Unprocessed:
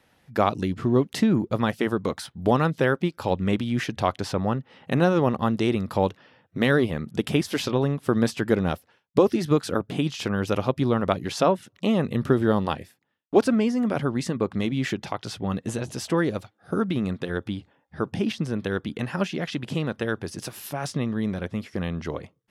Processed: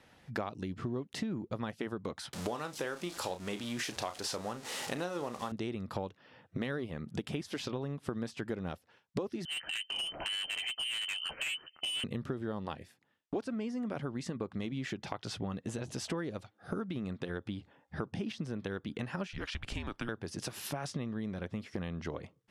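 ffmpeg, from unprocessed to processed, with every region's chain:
-filter_complex "[0:a]asettb=1/sr,asplit=3[s0][s1][s2];[s0]atrim=end=2.334[s3];[s1]atrim=start=2.33:end=5.52,asetpts=PTS-STARTPTS,afade=t=in:d=0.004:c=qsin,afade=t=out:st=3.186:d=0.004:c=qsin,aeval=exprs='val(0)+0.5*0.0224*sgn(val(0))':c=same,bass=f=250:g=-12,treble=f=4000:g=10,asplit=2[s4][s5];[s5]adelay=34,volume=0.299[s6];[s4][s6]amix=inputs=2:normalize=0,atrim=end_sample=140679[s7];[s2]atrim=start=5.516[s8];[s3][s7]acrossfade=d=0.004:c1=hsin:c2=qsin[s9];[s9][s8]acrossfade=d=0.004:c1=qsin:c2=hsin,asettb=1/sr,asplit=3[s10][s11][s12];[s10]atrim=end=9.454[s13];[s11]atrim=start=9.45:end=12.04,asetpts=PTS-STARTPTS,afade=t=in:d=0.004:c=qsin,afade=t=out:st=2.586:d=0.004:c=qsin,lowpass=f=2700:t=q:w=0.5098,lowpass=f=2700:t=q:w=0.6013,lowpass=f=2700:t=q:w=0.9,lowpass=f=2700:t=q:w=2.563,afreqshift=-3200,volume=22.4,asoftclip=hard,volume=0.0447,asplit=2[s14][s15];[s15]adelay=13,volume=0.251[s16];[s14][s16]amix=inputs=2:normalize=0,atrim=end_sample=114219[s17];[s12]atrim=start=12.036[s18];[s13][s17]acrossfade=d=0.004:c1=hsin:c2=qsin[s19];[s19][s18]acrossfade=d=0.004:c1=qsin:c2=hsin,asettb=1/sr,asplit=3[s20][s21][s22];[s20]atrim=end=19.274[s23];[s21]atrim=start=19.27:end=20.09,asetpts=PTS-STARTPTS,afade=t=in:d=0.004:c=qsin,afade=t=out:st=0.816:d=0.004:c=qsin,equalizer=f=76:w=0.41:g=-15,afreqshift=-220[s24];[s22]atrim=start=20.086[s25];[s23][s24]acrossfade=d=0.004:c1=hsin:c2=qsin[s26];[s26][s25]acrossfade=d=0.004:c1=qsin:c2=hsin,lowpass=9600,acompressor=threshold=0.0158:ratio=6,volume=1.12"

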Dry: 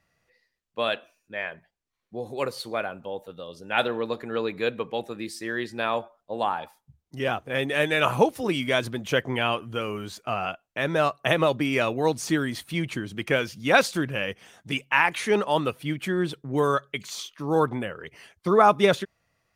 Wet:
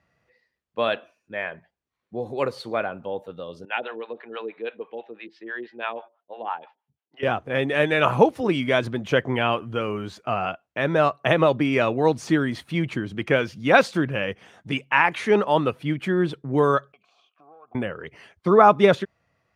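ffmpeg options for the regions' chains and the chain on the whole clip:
-filter_complex "[0:a]asettb=1/sr,asplit=3[s0][s1][s2];[s0]atrim=end=3.654[s3];[s1]atrim=start=3.65:end=7.23,asetpts=PTS-STARTPTS,afade=t=in:d=0.004:c=qsin,afade=t=out:st=3.576:d=0.004:c=qsin,highpass=430,equalizer=f=570:t=q:w=4:g=-4,equalizer=f=1200:t=q:w=4:g=-4,equalizer=f=2900:t=q:w=4:g=5,lowpass=f=3600:w=0.5412,lowpass=f=3600:w=1.3066,acrossover=split=560[s4][s5];[s4]aeval=exprs='val(0)*(1-1/2+1/2*cos(2*PI*6.1*n/s))':c=same[s6];[s5]aeval=exprs='val(0)*(1-1/2-1/2*cos(2*PI*6.1*n/s))':c=same[s7];[s6][s7]amix=inputs=2:normalize=0[s8];[s2]atrim=start=7.226[s9];[s3][s8]acrossfade=d=0.004:c1=hsin:c2=qsin[s10];[s10][s9]acrossfade=d=0.004:c1=qsin:c2=hsin,asettb=1/sr,asplit=3[s11][s12][s13];[s11]atrim=end=16.924[s14];[s12]atrim=start=16.92:end=17.75,asetpts=PTS-STARTPTS,afade=t=in:d=0.004:c=qsin,afade=t=out:st=0.826:d=0.004:c=qsin,acompressor=threshold=0.0178:ratio=6:attack=3.2:release=140:knee=1:detection=peak,aeval=exprs='(tanh(25.1*val(0)+0.45)-tanh(0.45))/25.1':c=same,asplit=3[s15][s16][s17];[s15]bandpass=f=730:t=q:w=8,volume=1[s18];[s16]bandpass=f=1090:t=q:w=8,volume=0.501[s19];[s17]bandpass=f=2440:t=q:w=8,volume=0.355[s20];[s18][s19][s20]amix=inputs=3:normalize=0[s21];[s13]atrim=start=17.746[s22];[s14][s21]acrossfade=d=0.004:c1=hsin:c2=qsin[s23];[s23][s22]acrossfade=d=0.004:c1=qsin:c2=hsin,highpass=56,aemphasis=mode=reproduction:type=75kf,volume=1.58"

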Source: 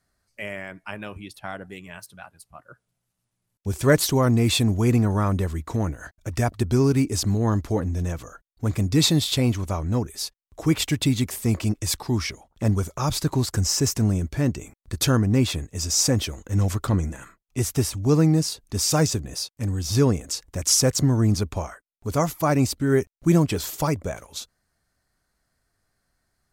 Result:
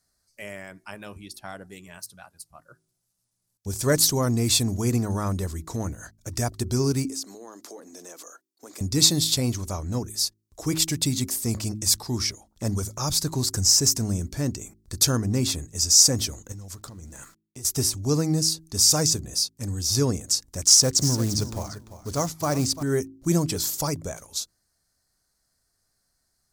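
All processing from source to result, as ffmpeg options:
-filter_complex "[0:a]asettb=1/sr,asplit=3[s0][s1][s2];[s0]atrim=end=7.094[s3];[s1]atrim=start=7.09:end=8.81,asetpts=PTS-STARTPTS,afade=t=in:d=0.004:c=qsin,afade=t=out:st=1.716:d=0.004:c=qsin,highpass=f=310:w=0.5412,highpass=f=310:w=1.3066,acompressor=threshold=0.0126:ratio=3:attack=3.2:release=140:knee=1:detection=peak[s4];[s2]atrim=start=8.806[s5];[s3][s4]acrossfade=d=0.004:c1=hsin:c2=qsin[s6];[s6][s5]acrossfade=d=0.004:c1=qsin:c2=hsin,asettb=1/sr,asplit=3[s7][s8][s9];[s7]atrim=end=16.524[s10];[s8]atrim=start=16.52:end=17.65,asetpts=PTS-STARTPTS,afade=t=in:d=0.004:c=qsin,afade=t=out:st=1.126:d=0.004:c=qsin,acompressor=threshold=0.02:ratio=8:attack=3.2:release=140:knee=1:detection=peak,aeval=exprs='val(0)*gte(abs(val(0)),0.00188)':c=same[s11];[s9]atrim=start=17.646[s12];[s10][s11]acrossfade=d=0.004:c1=hsin:c2=qsin[s13];[s13][s12]acrossfade=d=0.004:c1=qsin:c2=hsin,asettb=1/sr,asplit=3[s14][s15][s16];[s14]atrim=end=20.634[s17];[s15]atrim=start=20.63:end=22.83,asetpts=PTS-STARTPTS,afade=t=in:d=0.004:c=qsin,afade=t=out:st=2.196:d=0.004:c=qsin,aecho=1:1:345|690:0.224|0.0425,atrim=end_sample=97020,adynamicsmooth=sensitivity=7:basefreq=5900,acrusher=bits=6:mode=log:mix=0:aa=0.000001[s18];[s16]atrim=start=22.826[s19];[s17][s18]acrossfade=d=0.004:c1=hsin:c2=qsin[s20];[s20][s19]acrossfade=d=0.004:c1=qsin:c2=hsin,highshelf=f=3800:t=q:w=1.5:g=8.5,bandreject=f=53.52:t=h:w=4,bandreject=f=107.04:t=h:w=4,bandreject=f=160.56:t=h:w=4,bandreject=f=214.08:t=h:w=4,bandreject=f=267.6:t=h:w=4,bandreject=f=321.12:t=h:w=4,bandreject=f=374.64:t=h:w=4,volume=0.631"

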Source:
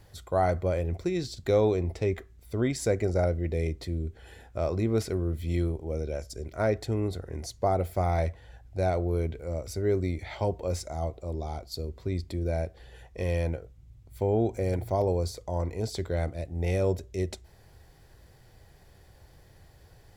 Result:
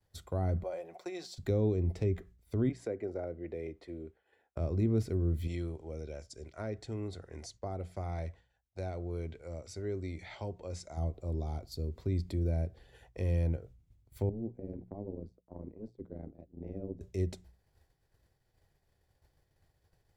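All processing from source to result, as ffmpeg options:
-filter_complex "[0:a]asettb=1/sr,asplit=3[s0][s1][s2];[s0]atrim=end=0.634[s3];[s1]atrim=start=0.63:end=1.38,asetpts=PTS-STARTPTS,afade=t=in:d=0.004:c=qsin,afade=t=out:st=0.746:d=0.004:c=qsin,highpass=f=750:t=q:w=2.7,aecho=1:1:5.5:0.47,atrim=end_sample=33075[s4];[s2]atrim=start=1.376[s5];[s3][s4]acrossfade=d=0.004:c1=hsin:c2=qsin[s6];[s6][s5]acrossfade=d=0.004:c1=qsin:c2=hsin,asettb=1/sr,asplit=3[s7][s8][s9];[s7]atrim=end=2.694[s10];[s8]atrim=start=2.69:end=4.57,asetpts=PTS-STARTPTS,afade=t=in:d=0.004:c=qsin,afade=t=out:st=1.876:d=0.004:c=qsin,lowpass=f=11000:w=0.5412,lowpass=f=11000:w=1.3066,acrossover=split=300 2800:gain=0.1 1 0.2[s11][s12][s13];[s11][s12][s13]amix=inputs=3:normalize=0[s14];[s9]atrim=start=4.566[s15];[s10][s14]acrossfade=d=0.004:c1=hsin:c2=qsin[s16];[s16][s15]acrossfade=d=0.004:c1=qsin:c2=hsin,asettb=1/sr,asplit=3[s17][s18][s19];[s17]atrim=end=5.474[s20];[s18]atrim=start=5.47:end=10.97,asetpts=PTS-STARTPTS,afade=t=in:d=0.004:c=qsin,afade=t=out:st=5.496:d=0.004:c=qsin,lowpass=f=8800:w=0.5412,lowpass=f=8800:w=1.3066,lowshelf=f=470:g=-10[s21];[s19]atrim=start=10.966[s22];[s20][s21]acrossfade=d=0.004:c1=hsin:c2=qsin[s23];[s23][s22]acrossfade=d=0.004:c1=qsin:c2=hsin,asettb=1/sr,asplit=3[s24][s25][s26];[s24]atrim=end=14.294[s27];[s25]atrim=start=14.29:end=17.01,asetpts=PTS-STARTPTS,afade=t=in:d=0.004:c=qsin,afade=t=out:st=2.716:d=0.004:c=qsin,bandpass=f=250:t=q:w=2.1,tremolo=f=110:d=0.788[s28];[s26]atrim=start=17.006[s29];[s27][s28]acrossfade=d=0.004:c1=hsin:c2=qsin[s30];[s30][s29]acrossfade=d=0.004:c1=qsin:c2=hsin,agate=range=0.0224:threshold=0.00794:ratio=3:detection=peak,bandreject=f=60:t=h:w=6,bandreject=f=120:t=h:w=6,bandreject=f=180:t=h:w=6,acrossover=split=340[s31][s32];[s32]acompressor=threshold=0.00355:ratio=2.5[s33];[s31][s33]amix=inputs=2:normalize=0"

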